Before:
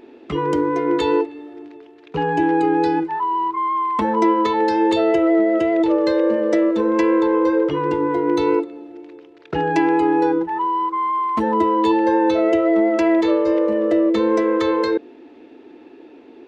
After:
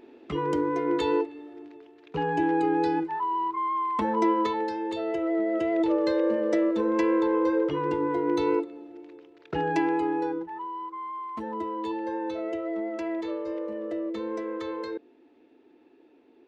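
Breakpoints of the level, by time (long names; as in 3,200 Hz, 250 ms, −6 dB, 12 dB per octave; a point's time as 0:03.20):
0:04.43 −7 dB
0:04.82 −15 dB
0:05.81 −7 dB
0:09.71 −7 dB
0:10.67 −15 dB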